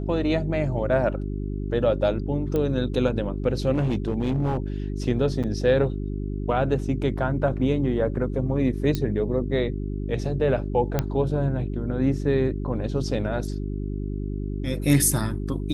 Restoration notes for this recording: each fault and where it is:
hum 50 Hz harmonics 8 -29 dBFS
2.56 s: pop -15 dBFS
3.73–4.57 s: clipped -19 dBFS
5.43–5.44 s: dropout 7 ms
8.95 s: pop -12 dBFS
10.99 s: pop -9 dBFS

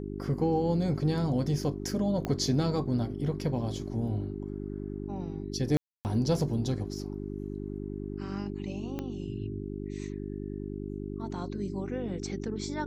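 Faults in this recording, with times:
hum 50 Hz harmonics 8 -37 dBFS
2.25 s: pop -18 dBFS
5.77–6.05 s: dropout 279 ms
8.99 s: pop -21 dBFS

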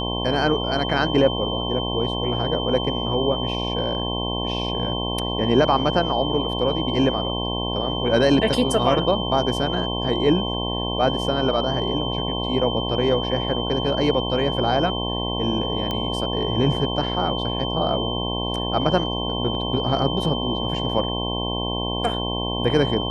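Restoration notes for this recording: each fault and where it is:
buzz 60 Hz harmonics 18 -27 dBFS
whine 3.1 kHz -28 dBFS
15.91 s: pop -13 dBFS

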